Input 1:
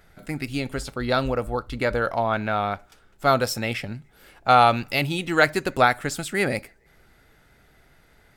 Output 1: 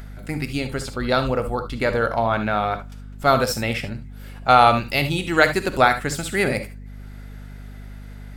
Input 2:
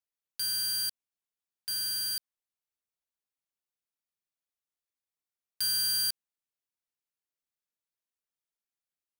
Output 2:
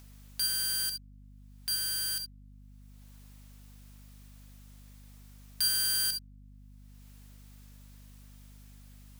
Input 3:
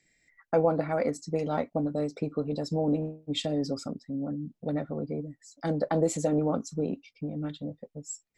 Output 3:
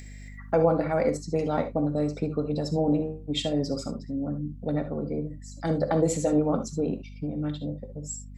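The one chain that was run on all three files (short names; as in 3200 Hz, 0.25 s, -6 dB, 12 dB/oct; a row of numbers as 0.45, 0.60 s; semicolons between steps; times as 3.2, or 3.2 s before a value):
upward compressor, threshold -43 dBFS; non-linear reverb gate 90 ms rising, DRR 9 dB; hum 50 Hz, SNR 15 dB; gain +2 dB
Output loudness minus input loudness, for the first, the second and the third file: +2.5, -0.5, +2.5 LU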